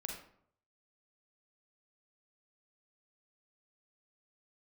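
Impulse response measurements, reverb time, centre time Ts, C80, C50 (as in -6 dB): 0.65 s, 35 ms, 7.5 dB, 3.0 dB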